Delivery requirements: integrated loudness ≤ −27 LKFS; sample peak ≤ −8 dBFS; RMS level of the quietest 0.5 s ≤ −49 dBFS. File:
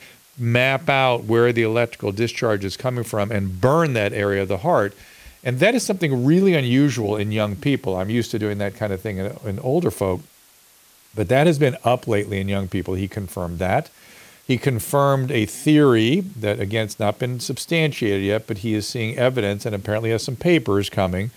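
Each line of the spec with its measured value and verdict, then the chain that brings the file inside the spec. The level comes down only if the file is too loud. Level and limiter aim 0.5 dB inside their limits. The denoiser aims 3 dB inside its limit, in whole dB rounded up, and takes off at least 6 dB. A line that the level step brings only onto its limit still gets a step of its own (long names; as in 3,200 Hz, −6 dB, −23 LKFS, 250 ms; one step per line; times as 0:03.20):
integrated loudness −20.5 LKFS: out of spec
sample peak −4.5 dBFS: out of spec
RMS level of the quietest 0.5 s −53 dBFS: in spec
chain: level −7 dB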